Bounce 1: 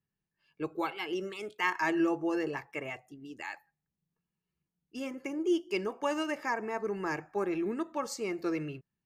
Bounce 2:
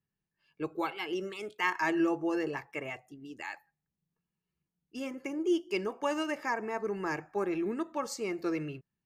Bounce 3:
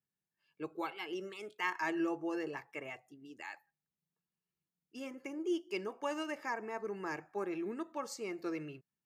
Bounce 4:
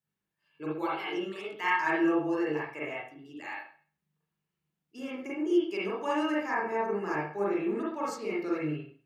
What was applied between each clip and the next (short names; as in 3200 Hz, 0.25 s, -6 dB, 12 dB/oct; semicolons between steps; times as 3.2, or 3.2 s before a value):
nothing audible
HPF 160 Hz 6 dB/oct; gain -5.5 dB
reverb, pre-delay 39 ms, DRR -7 dB